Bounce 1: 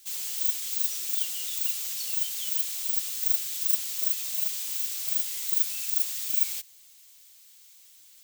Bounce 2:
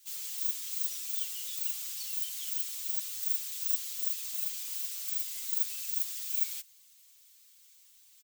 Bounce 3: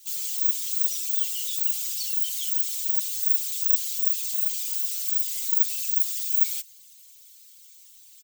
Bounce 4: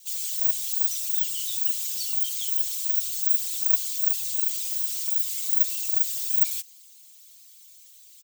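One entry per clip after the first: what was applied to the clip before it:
elliptic band-stop 130–970 Hz, stop band 60 dB; comb 6.2 ms, depth 84%; trim -8 dB
resonances exaggerated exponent 1.5; trim +9 dB
frequency shift +64 Hz; brick-wall FIR high-pass 360 Hz

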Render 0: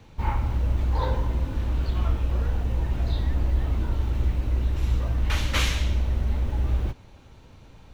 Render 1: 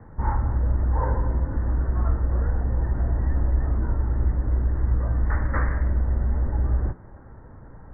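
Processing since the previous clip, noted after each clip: steep low-pass 1.9 kHz 96 dB/octave; de-hum 86.16 Hz, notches 35; in parallel at -1.5 dB: compression, threshold -33 dBFS, peak gain reduction 15 dB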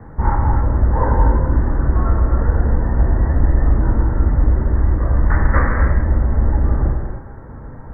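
gated-style reverb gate 300 ms flat, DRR 1 dB; trim +7.5 dB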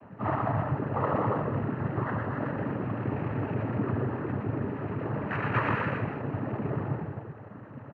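on a send: delay 120 ms -3.5 dB; on the sum: noise-vocoded speech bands 12; trim -7.5 dB

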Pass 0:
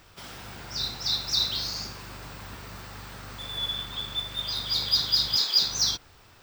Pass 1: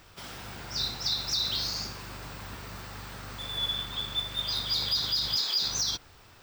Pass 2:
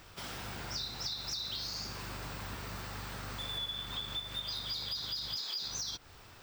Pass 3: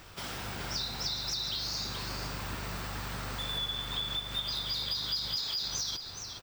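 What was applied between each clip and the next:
peak limiter -19 dBFS, peak gain reduction 8 dB
compression, threshold -36 dBFS, peak gain reduction 11.5 dB
delay 423 ms -7.5 dB; trim +3.5 dB

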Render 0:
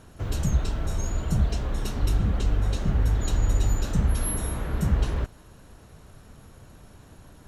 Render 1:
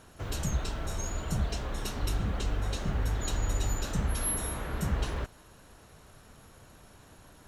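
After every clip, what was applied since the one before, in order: bass shelf 380 Hz -8 dB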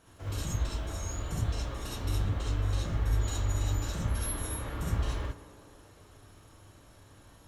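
tape echo 120 ms, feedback 89%, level -14 dB, low-pass 1.9 kHz; gated-style reverb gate 90 ms rising, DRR -4.5 dB; trim -8.5 dB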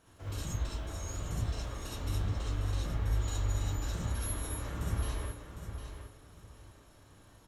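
feedback delay 756 ms, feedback 23%, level -9 dB; trim -3.5 dB

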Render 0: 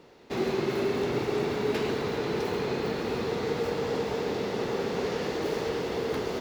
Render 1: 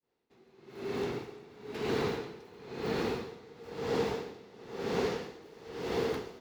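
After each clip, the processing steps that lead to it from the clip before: fade-in on the opening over 1.73 s; band-stop 590 Hz, Q 12; logarithmic tremolo 1 Hz, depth 23 dB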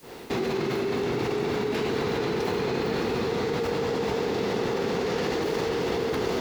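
level flattener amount 100%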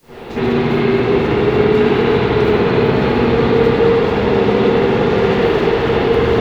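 bass shelf 78 Hz +10.5 dB; reverberation RT60 2.3 s, pre-delay 54 ms, DRR -16 dB; trim -3.5 dB

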